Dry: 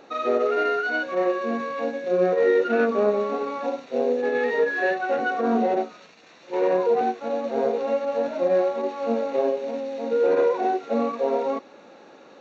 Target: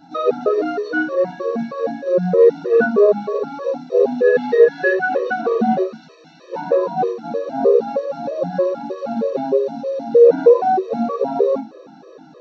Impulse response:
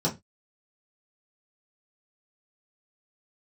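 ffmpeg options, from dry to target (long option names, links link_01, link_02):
-filter_complex "[0:a]asettb=1/sr,asplit=3[link_01][link_02][link_03];[link_01]atrim=end=3.964[link_04];[link_02]atrim=start=3.96:end=6.53,asetpts=PTS-STARTPTS,afade=type=in:duration=0.004:curve=qsin,afade=type=out:start_time=2.566:duration=0.004:curve=qsin,equalizer=frequency=2300:width_type=o:width=1.7:gain=4.5[link_05];[link_03]atrim=start=6.526[link_06];[link_04][link_05]acrossfade=duration=0.004:curve1=hsin:curve2=qsin[link_07];[link_07][link_06]acrossfade=duration=0.004:curve1=qsin:curve2=hsin[link_08];[1:a]atrim=start_sample=2205[link_09];[link_08][link_09]afir=irnorm=-1:irlink=0,afftfilt=real='re*gt(sin(2*PI*3.2*pts/sr)*(1-2*mod(floor(b*sr/1024/330),2)),0)':imag='im*gt(sin(2*PI*3.2*pts/sr)*(1-2*mod(floor(b*sr/1024/330),2)),0)':win_size=1024:overlap=0.75,volume=-5dB"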